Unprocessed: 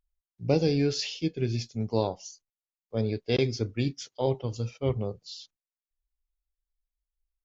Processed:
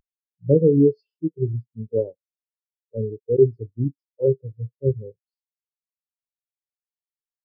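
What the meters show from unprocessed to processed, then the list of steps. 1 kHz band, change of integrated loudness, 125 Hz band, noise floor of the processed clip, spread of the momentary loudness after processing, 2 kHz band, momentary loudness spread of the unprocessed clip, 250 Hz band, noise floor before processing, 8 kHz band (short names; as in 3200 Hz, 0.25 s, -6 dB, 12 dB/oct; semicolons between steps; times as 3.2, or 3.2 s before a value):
under -25 dB, +7.0 dB, +5.0 dB, under -85 dBFS, 15 LU, under -40 dB, 12 LU, +6.0 dB, under -85 dBFS, n/a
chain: per-bin compression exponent 0.6; upward compressor, threshold -37 dBFS; spectral expander 4:1; gain +4 dB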